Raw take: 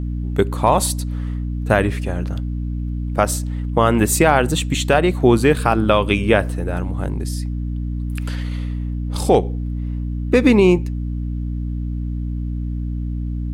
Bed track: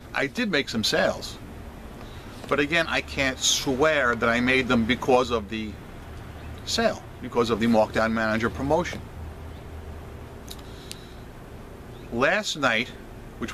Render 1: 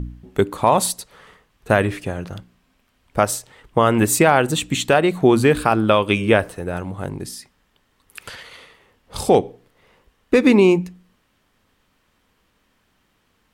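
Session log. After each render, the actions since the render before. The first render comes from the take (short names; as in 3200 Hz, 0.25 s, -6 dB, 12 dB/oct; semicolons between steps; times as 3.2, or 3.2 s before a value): de-hum 60 Hz, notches 5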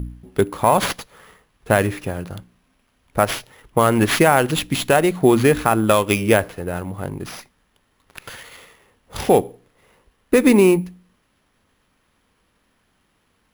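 sample-rate reducer 11000 Hz, jitter 0%; running maximum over 3 samples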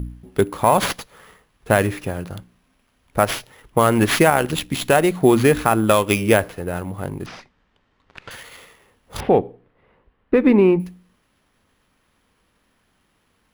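4.3–4.82 AM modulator 74 Hz, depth 40%; 7.26–8.31 air absorption 130 m; 9.2–10.8 air absorption 440 m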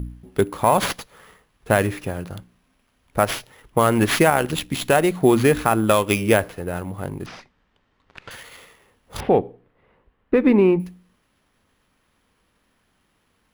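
gain -1.5 dB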